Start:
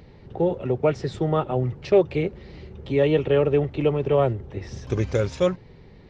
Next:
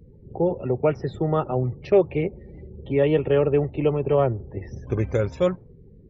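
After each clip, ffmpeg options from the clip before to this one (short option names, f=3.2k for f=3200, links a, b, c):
-af "equalizer=f=4.4k:w=0.97:g=-4.5,afftdn=nr=28:nf=-45"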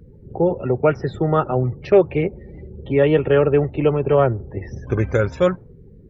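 -af "equalizer=f=1.5k:w=2.8:g=8,volume=4dB"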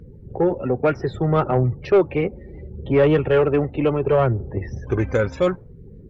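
-af "aphaser=in_gain=1:out_gain=1:delay=4:decay=0.32:speed=0.67:type=sinusoidal,acontrast=72,volume=-7dB"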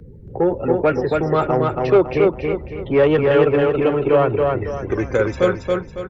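-filter_complex "[0:a]acrossover=split=220|2000[a][b][c];[a]asoftclip=type=tanh:threshold=-31dB[d];[d][b][c]amix=inputs=3:normalize=0,aecho=1:1:277|554|831|1108|1385:0.708|0.255|0.0917|0.033|0.0119,volume=2dB"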